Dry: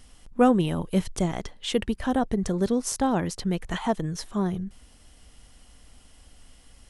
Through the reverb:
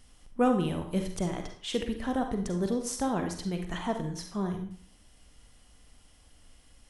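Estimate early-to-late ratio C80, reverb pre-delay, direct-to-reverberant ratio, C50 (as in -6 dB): 10.5 dB, 38 ms, 4.5 dB, 6.5 dB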